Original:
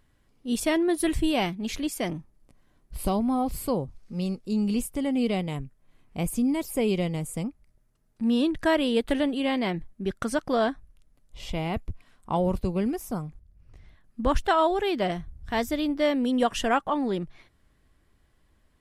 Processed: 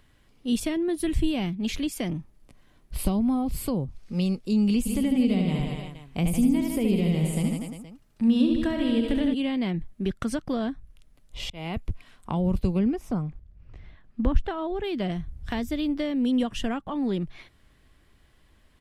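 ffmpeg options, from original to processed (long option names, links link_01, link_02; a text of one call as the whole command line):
ffmpeg -i in.wav -filter_complex "[0:a]asplit=3[link_01][link_02][link_03];[link_01]afade=type=out:start_time=4.85:duration=0.02[link_04];[link_02]aecho=1:1:70|150.5|243.1|349.5|472:0.631|0.398|0.251|0.158|0.1,afade=type=in:start_time=4.85:duration=0.02,afade=type=out:start_time=9.33:duration=0.02[link_05];[link_03]afade=type=in:start_time=9.33:duration=0.02[link_06];[link_04][link_05][link_06]amix=inputs=3:normalize=0,asettb=1/sr,asplit=3[link_07][link_08][link_09];[link_07]atrim=end=12.794[link_10];[link_08]atrim=start=12.79:end=14.84,asetpts=PTS-STARTPTS,afade=type=in:duration=0.004:curve=qsin,afade=type=out:start_time=2.046:duration=0.004:curve=qsin,aemphasis=mode=reproduction:type=75fm[link_11];[link_09]atrim=start=14.836[link_12];[link_10][link_11]acrossfade=duration=0.004:curve1=hsin:curve2=qsin[link_13];[link_13][link_12]acrossfade=duration=0.004:curve1=qsin:curve2=hsin,asplit=2[link_14][link_15];[link_14]atrim=end=11.5,asetpts=PTS-STARTPTS,afade=type=out:start_time=11.496:duration=0.004:curve=hsin[link_16];[link_15]atrim=start=11.5,asetpts=PTS-STARTPTS,afade=type=in:duration=0.4[link_17];[link_16][link_17]concat=n=2:v=0:a=1,equalizer=frequency=3000:width_type=o:width=1.3:gain=5,acrossover=split=280[link_18][link_19];[link_19]acompressor=threshold=-36dB:ratio=10[link_20];[link_18][link_20]amix=inputs=2:normalize=0,volume=4.5dB" out.wav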